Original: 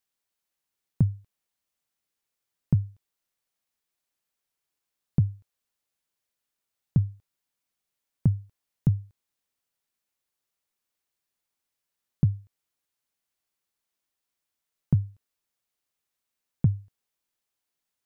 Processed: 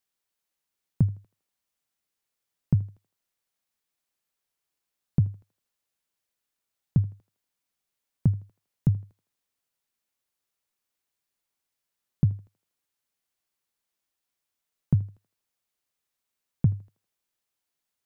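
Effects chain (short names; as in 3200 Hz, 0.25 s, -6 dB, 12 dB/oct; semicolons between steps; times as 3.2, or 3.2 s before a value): thinning echo 80 ms, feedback 50%, high-pass 330 Hz, level -18 dB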